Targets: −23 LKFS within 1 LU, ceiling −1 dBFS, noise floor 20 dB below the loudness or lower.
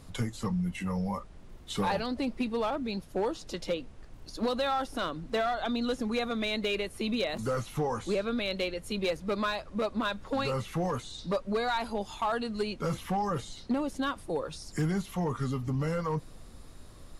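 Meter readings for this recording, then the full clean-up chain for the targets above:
share of clipped samples 1.0%; peaks flattened at −23.0 dBFS; background noise floor −49 dBFS; target noise floor −52 dBFS; integrated loudness −32.0 LKFS; sample peak −23.0 dBFS; target loudness −23.0 LKFS
→ clipped peaks rebuilt −23 dBFS
noise reduction from a noise print 6 dB
level +9 dB

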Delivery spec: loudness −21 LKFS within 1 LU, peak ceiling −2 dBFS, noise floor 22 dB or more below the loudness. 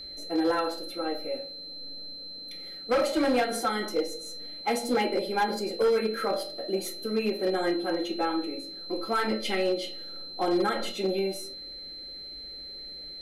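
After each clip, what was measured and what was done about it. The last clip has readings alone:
share of clipped samples 1.2%; peaks flattened at −19.5 dBFS; interfering tone 4,100 Hz; level of the tone −39 dBFS; integrated loudness −29.5 LKFS; sample peak −19.5 dBFS; target loudness −21.0 LKFS
→ clipped peaks rebuilt −19.5 dBFS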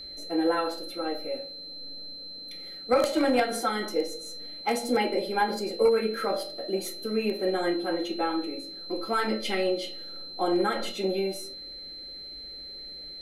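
share of clipped samples 0.0%; interfering tone 4,100 Hz; level of the tone −39 dBFS
→ notch filter 4,100 Hz, Q 30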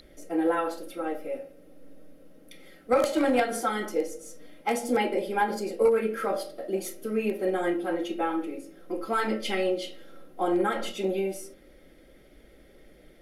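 interfering tone none found; integrated loudness −28.5 LKFS; sample peak −10.5 dBFS; target loudness −21.0 LKFS
→ level +7.5 dB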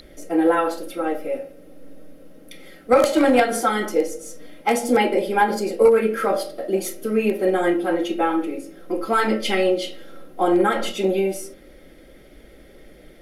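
integrated loudness −21.0 LKFS; sample peak −3.0 dBFS; background noise floor −47 dBFS

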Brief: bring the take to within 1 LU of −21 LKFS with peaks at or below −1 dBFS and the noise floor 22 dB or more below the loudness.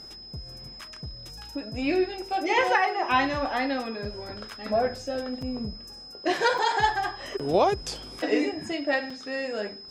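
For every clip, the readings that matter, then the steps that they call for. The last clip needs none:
number of dropouts 4; longest dropout 4.1 ms; interfering tone 5,100 Hz; level of the tone −42 dBFS; integrated loudness −27.0 LKFS; sample peak −10.5 dBFS; target loudness −21.0 LKFS
→ repair the gap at 0:04.05/0:05.42/0:06.58/0:09.10, 4.1 ms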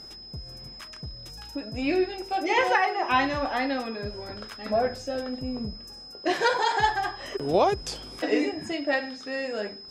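number of dropouts 0; interfering tone 5,100 Hz; level of the tone −42 dBFS
→ notch filter 5,100 Hz, Q 30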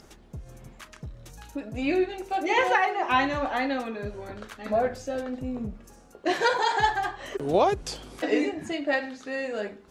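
interfering tone none found; integrated loudness −27.0 LKFS; sample peak −10.0 dBFS; target loudness −21.0 LKFS
→ level +6 dB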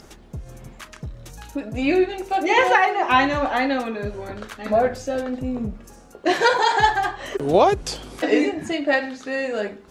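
integrated loudness −21.0 LKFS; sample peak −4.0 dBFS; background noise floor −47 dBFS

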